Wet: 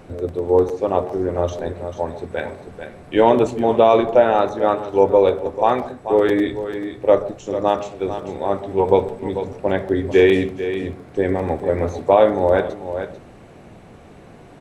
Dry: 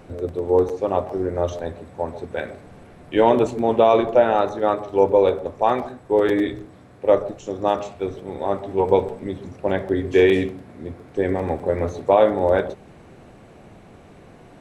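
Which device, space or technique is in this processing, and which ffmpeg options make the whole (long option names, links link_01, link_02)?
ducked delay: -filter_complex "[0:a]asplit=3[link_01][link_02][link_03];[link_02]adelay=442,volume=-9dB[link_04];[link_03]apad=whole_len=663749[link_05];[link_04][link_05]sidechaincompress=threshold=-22dB:ratio=8:attack=37:release=561[link_06];[link_01][link_06]amix=inputs=2:normalize=0,volume=2dB"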